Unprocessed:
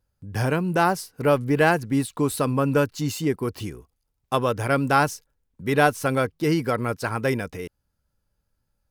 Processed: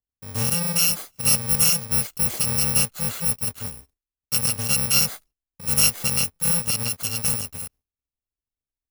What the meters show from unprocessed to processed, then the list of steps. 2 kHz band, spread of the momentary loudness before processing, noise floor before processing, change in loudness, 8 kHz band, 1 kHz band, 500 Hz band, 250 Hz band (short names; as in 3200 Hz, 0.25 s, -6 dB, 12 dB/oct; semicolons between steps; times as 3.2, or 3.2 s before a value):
-5.5 dB, 13 LU, -76 dBFS, +3.5 dB, +16.5 dB, -13.0 dB, -15.0 dB, -9.0 dB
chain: FFT order left unsorted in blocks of 128 samples; gate with hold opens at -44 dBFS